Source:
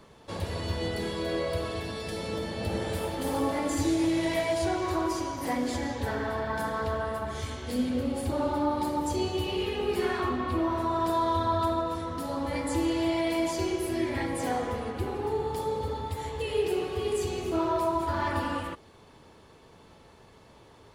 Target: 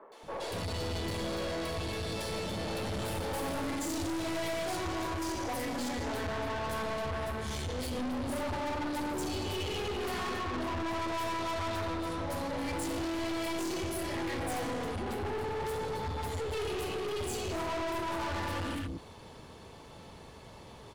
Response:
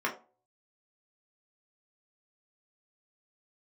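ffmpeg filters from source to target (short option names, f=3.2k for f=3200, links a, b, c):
-filter_complex "[0:a]acrossover=split=350|1500[a][b][c];[c]adelay=120[d];[a]adelay=230[e];[e][b][d]amix=inputs=3:normalize=0,aeval=exprs='(tanh(89.1*val(0)+0.25)-tanh(0.25))/89.1':c=same,volume=6dB"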